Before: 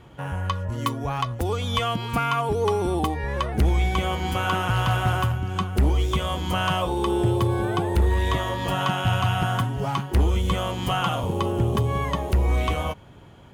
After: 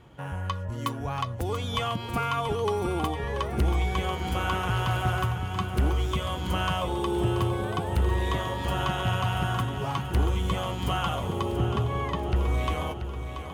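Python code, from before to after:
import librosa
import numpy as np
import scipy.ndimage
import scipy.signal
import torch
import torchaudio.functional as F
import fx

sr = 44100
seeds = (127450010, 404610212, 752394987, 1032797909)

y = fx.lowpass(x, sr, hz=4600.0, slope=12, at=(11.56, 12.36))
y = fx.echo_feedback(y, sr, ms=683, feedback_pct=56, wet_db=-9.5)
y = y * 10.0 ** (-4.5 / 20.0)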